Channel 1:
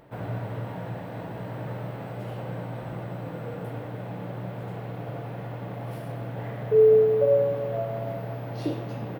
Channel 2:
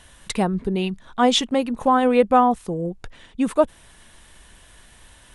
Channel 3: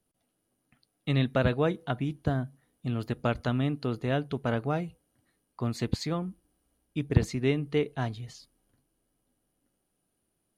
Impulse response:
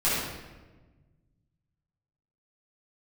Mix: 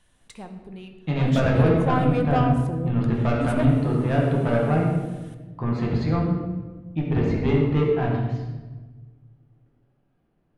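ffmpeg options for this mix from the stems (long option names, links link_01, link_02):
-filter_complex "[1:a]asoftclip=type=tanh:threshold=-13.5dB,volume=-7dB,afade=type=in:start_time=1.47:duration=0.27:silence=0.281838,asplit=2[link_01][link_02];[link_02]volume=-18dB[link_03];[2:a]lowpass=2100,asoftclip=type=tanh:threshold=-23dB,volume=1dB,asplit=2[link_04][link_05];[link_05]volume=-7dB[link_06];[3:a]atrim=start_sample=2205[link_07];[link_03][link_06]amix=inputs=2:normalize=0[link_08];[link_08][link_07]afir=irnorm=-1:irlink=0[link_09];[link_01][link_04][link_09]amix=inputs=3:normalize=0"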